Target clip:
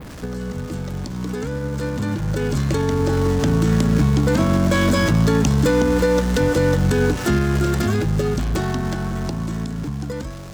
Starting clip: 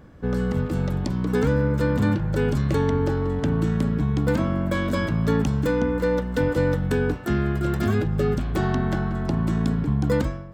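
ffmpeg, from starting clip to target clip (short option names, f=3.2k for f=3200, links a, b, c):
-af "aeval=exprs='val(0)+0.5*0.0251*sgn(val(0))':c=same,adynamicequalizer=threshold=0.00224:dfrequency=6400:dqfactor=0.88:tfrequency=6400:tqfactor=0.88:attack=5:release=100:ratio=0.375:range=4:mode=boostabove:tftype=bell,alimiter=limit=-19.5dB:level=0:latency=1:release=369,dynaudnorm=f=250:g=21:m=11dB"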